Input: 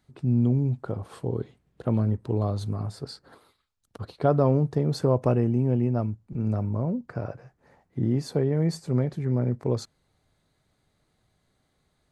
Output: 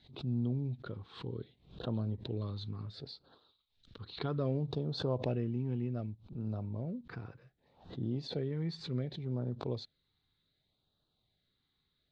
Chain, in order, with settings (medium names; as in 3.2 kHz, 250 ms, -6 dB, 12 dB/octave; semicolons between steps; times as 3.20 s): LFO notch sine 0.66 Hz 580–2200 Hz; four-pole ladder low-pass 4.1 kHz, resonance 70%; swell ahead of each attack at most 130 dB/s